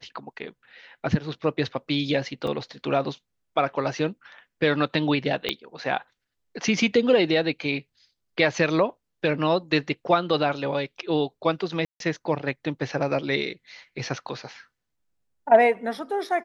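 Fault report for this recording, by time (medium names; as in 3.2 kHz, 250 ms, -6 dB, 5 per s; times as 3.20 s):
2.47 s: dropout 3.7 ms
5.49 s: pop -10 dBFS
11.85–12.00 s: dropout 152 ms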